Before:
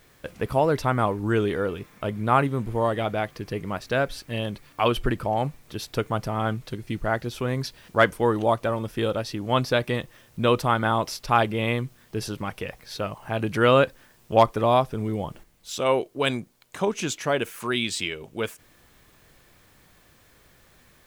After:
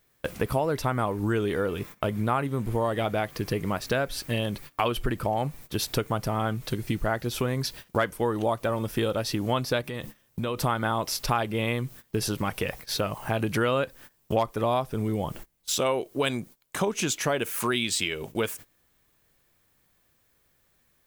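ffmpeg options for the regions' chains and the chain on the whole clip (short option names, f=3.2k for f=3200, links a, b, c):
-filter_complex "[0:a]asettb=1/sr,asplit=3[a][b][c];[a]atrim=end=9.814[d];[b]atrim=start=9.81:end=10.62,asetpts=PTS-STARTPTS,afade=t=in:d=0.004:c=qsin,afade=t=out:st=0.806:d=0.004:c=qsin,bandreject=f=71.34:t=h:w=4,bandreject=f=142.68:t=h:w=4,bandreject=f=214.02:t=h:w=4,bandreject=f=285.36:t=h:w=4,acompressor=threshold=-33dB:ratio=4:attack=3.2:release=140:knee=1:detection=peak[e];[c]atrim=start=10.616[f];[d][e]acrossfade=d=0.004:c1=hsin:c2=qsin[g];[g][f]acrossfade=d=0.004:c1=qsin:c2=hsin,agate=range=-20dB:threshold=-45dB:ratio=16:detection=peak,highshelf=f=9.8k:g=10,acompressor=threshold=-30dB:ratio=4,volume=6dB"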